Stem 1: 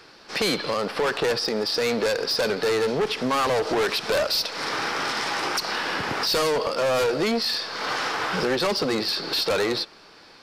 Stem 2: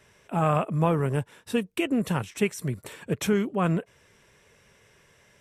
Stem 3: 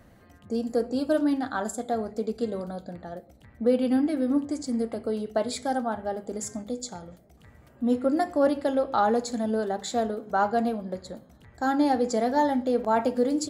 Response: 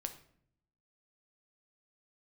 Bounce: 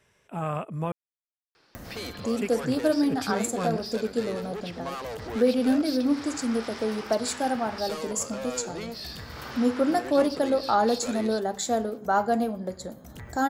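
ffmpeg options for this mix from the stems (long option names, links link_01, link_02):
-filter_complex "[0:a]adelay=1550,volume=-13.5dB[link_01];[1:a]volume=-7dB,asplit=3[link_02][link_03][link_04];[link_02]atrim=end=0.92,asetpts=PTS-STARTPTS,afade=type=out:start_time=0.916:duration=0.004:curve=hsin[link_05];[link_03]atrim=start=0.92:end=2.27,asetpts=PTS-STARTPTS,volume=0[link_06];[link_04]atrim=start=2.27,asetpts=PTS-STARTPTS,afade=type=in:duration=0.004:curve=hsin[link_07];[link_05][link_06][link_07]concat=n=3:v=0:a=1[link_08];[2:a]aexciter=amount=1.9:drive=5.1:freq=5500,acompressor=mode=upward:threshold=-31dB:ratio=2.5,adelay=1750,volume=0.5dB[link_09];[link_01][link_08][link_09]amix=inputs=3:normalize=0"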